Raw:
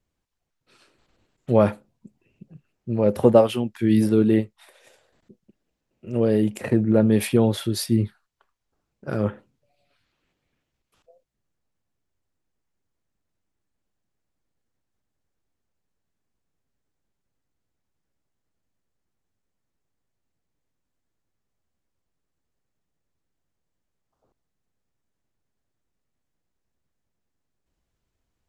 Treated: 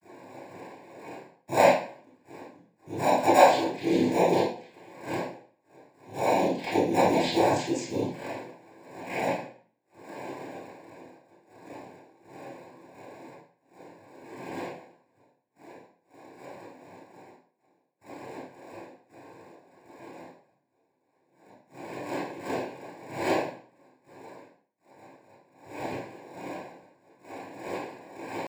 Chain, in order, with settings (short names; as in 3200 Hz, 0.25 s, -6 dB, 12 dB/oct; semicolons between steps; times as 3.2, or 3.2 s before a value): wind noise 350 Hz -35 dBFS; expander -42 dBFS; three-band isolator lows -17 dB, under 450 Hz, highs -21 dB, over 2900 Hz; soft clip -12 dBFS, distortion -17 dB; pitch shift +5 st; noise vocoder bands 8; low-pass opened by the level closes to 1700 Hz, open at -28.5 dBFS; in parallel at -10 dB: sample-and-hold 14×; on the sum: Butterworth band-stop 1300 Hz, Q 2.4; reverb RT60 0.50 s, pre-delay 26 ms, DRR -9 dB; gain -3.5 dB